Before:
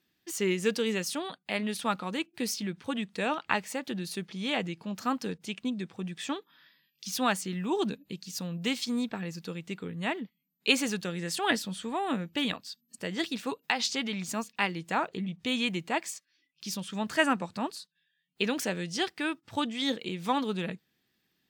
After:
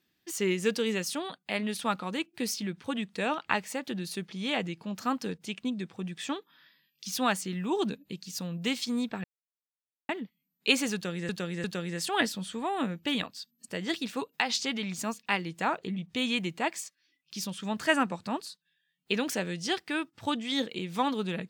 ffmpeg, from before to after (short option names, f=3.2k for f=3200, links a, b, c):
-filter_complex "[0:a]asplit=5[a][b][c][d][e];[a]atrim=end=9.24,asetpts=PTS-STARTPTS,afade=t=out:st=9.236:d=0.004:c=hsin[f];[b]atrim=start=9.24:end=10.09,asetpts=PTS-STARTPTS,volume=0[g];[c]atrim=start=10.09:end=11.292,asetpts=PTS-STARTPTS,afade=t=in:d=0.004:c=hsin[h];[d]atrim=start=10.938:end=11.292[i];[e]atrim=start=10.938[j];[f][g][h]concat=n=3:v=0:a=1[k];[k][i]acrossfade=d=0.004:c1=hsin:c2=hsin[l];[l][j]acrossfade=d=0.004:c1=hsin:c2=hsin"